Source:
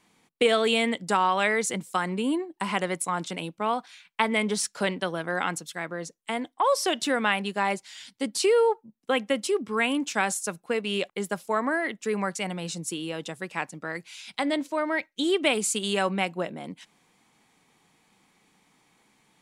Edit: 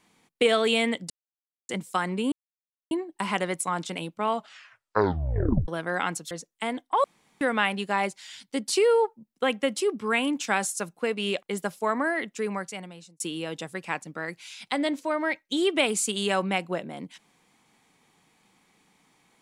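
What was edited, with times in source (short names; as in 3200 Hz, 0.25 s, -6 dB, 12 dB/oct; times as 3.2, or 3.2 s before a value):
1.1–1.69 mute
2.32 insert silence 0.59 s
3.66 tape stop 1.43 s
5.72–5.98 cut
6.71–7.08 room tone
11.94–12.87 fade out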